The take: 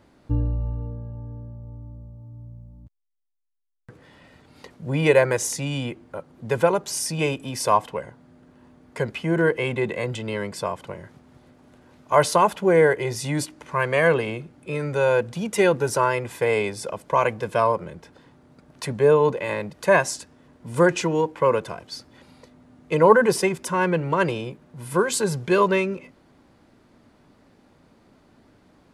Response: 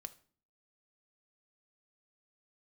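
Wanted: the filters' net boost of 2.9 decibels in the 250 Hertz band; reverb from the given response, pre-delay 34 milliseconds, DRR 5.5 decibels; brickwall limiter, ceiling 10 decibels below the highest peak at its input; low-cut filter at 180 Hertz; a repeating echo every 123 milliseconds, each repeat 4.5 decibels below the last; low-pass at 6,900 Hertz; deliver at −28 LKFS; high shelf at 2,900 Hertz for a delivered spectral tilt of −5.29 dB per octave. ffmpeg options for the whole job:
-filter_complex "[0:a]highpass=180,lowpass=6900,equalizer=frequency=250:width_type=o:gain=6.5,highshelf=frequency=2900:gain=-6.5,alimiter=limit=-11dB:level=0:latency=1,aecho=1:1:123|246|369|492|615|738|861|984|1107:0.596|0.357|0.214|0.129|0.0772|0.0463|0.0278|0.0167|0.01,asplit=2[link_01][link_02];[1:a]atrim=start_sample=2205,adelay=34[link_03];[link_02][link_03]afir=irnorm=-1:irlink=0,volume=-0.5dB[link_04];[link_01][link_04]amix=inputs=2:normalize=0,volume=-7dB"

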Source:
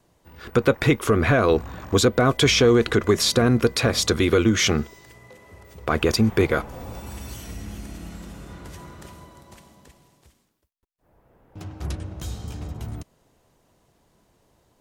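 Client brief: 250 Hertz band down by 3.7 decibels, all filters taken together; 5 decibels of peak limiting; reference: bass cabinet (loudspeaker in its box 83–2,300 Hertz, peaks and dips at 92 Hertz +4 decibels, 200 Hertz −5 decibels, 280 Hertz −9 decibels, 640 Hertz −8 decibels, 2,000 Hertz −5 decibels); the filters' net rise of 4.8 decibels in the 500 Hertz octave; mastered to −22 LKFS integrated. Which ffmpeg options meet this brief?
ffmpeg -i in.wav -af "equalizer=frequency=250:width_type=o:gain=-3,equalizer=frequency=500:width_type=o:gain=9,alimiter=limit=-6.5dB:level=0:latency=1,highpass=frequency=83:width=0.5412,highpass=frequency=83:width=1.3066,equalizer=frequency=92:width_type=q:width=4:gain=4,equalizer=frequency=200:width_type=q:width=4:gain=-5,equalizer=frequency=280:width_type=q:width=4:gain=-9,equalizer=frequency=640:width_type=q:width=4:gain=-8,equalizer=frequency=2000:width_type=q:width=4:gain=-5,lowpass=frequency=2300:width=0.5412,lowpass=frequency=2300:width=1.3066,volume=-1dB" out.wav

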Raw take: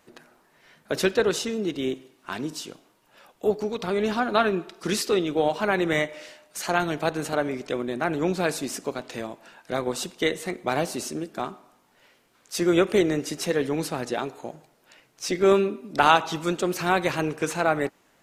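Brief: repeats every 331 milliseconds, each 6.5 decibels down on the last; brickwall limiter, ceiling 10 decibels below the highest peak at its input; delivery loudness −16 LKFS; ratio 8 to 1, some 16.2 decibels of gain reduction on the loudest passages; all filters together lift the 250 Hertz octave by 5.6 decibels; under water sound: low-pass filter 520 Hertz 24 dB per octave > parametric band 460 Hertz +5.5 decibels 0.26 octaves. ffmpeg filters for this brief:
ffmpeg -i in.wav -af "equalizer=frequency=250:width_type=o:gain=8,acompressor=threshold=-29dB:ratio=8,alimiter=limit=-24dB:level=0:latency=1,lowpass=frequency=520:width=0.5412,lowpass=frequency=520:width=1.3066,equalizer=frequency=460:width_type=o:width=0.26:gain=5.5,aecho=1:1:331|662|993|1324|1655|1986:0.473|0.222|0.105|0.0491|0.0231|0.0109,volume=19dB" out.wav

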